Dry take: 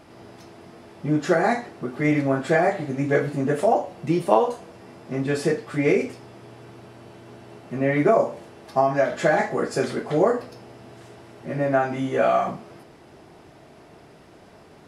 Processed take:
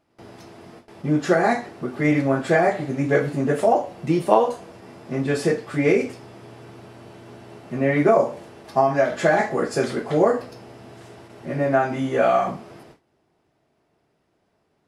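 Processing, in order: gate with hold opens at -36 dBFS; trim +1.5 dB

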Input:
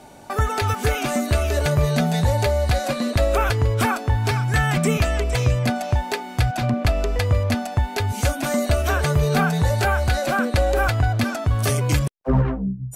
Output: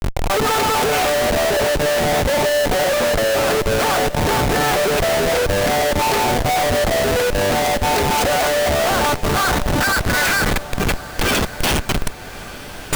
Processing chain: compressor with a negative ratio -25 dBFS, ratio -1; high-pass sweep 520 Hz -> 3 kHz, 8.09–11.25 s; Schmitt trigger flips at -30 dBFS; echo that smears into a reverb 1179 ms, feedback 55%, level -15.5 dB; trim +8 dB

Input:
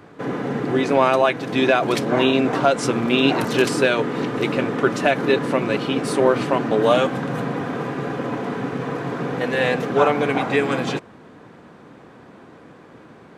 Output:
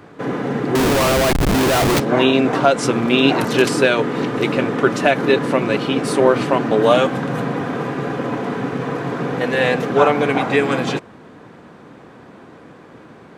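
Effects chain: 0.75–2.00 s: Schmitt trigger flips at -24 dBFS; trim +3 dB

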